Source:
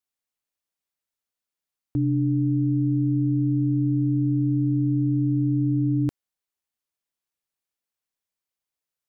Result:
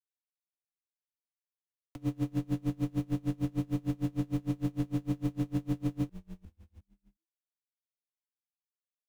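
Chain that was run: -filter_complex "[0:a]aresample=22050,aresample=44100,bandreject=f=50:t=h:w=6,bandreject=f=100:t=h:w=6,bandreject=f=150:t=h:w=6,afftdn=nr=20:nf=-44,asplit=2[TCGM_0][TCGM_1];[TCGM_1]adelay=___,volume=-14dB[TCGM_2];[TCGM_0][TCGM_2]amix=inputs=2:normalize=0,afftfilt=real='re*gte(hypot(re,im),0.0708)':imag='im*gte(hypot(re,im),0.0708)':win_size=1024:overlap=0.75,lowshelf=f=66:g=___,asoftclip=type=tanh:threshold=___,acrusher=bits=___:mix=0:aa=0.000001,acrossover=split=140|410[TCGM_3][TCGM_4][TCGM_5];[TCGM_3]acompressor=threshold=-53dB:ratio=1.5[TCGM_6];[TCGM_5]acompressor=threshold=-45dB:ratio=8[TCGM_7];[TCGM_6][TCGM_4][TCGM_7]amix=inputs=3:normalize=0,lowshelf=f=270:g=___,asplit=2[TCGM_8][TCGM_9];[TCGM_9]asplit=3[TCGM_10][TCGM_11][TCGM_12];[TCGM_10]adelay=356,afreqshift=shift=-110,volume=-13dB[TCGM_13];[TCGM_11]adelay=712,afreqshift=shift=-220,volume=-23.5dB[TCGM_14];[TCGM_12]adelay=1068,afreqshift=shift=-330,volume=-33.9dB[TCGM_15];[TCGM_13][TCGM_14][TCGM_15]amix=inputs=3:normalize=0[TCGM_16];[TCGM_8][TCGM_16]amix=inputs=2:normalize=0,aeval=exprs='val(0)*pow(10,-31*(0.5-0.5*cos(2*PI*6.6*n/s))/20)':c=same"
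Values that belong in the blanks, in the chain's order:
20, 9, -20dB, 4, 3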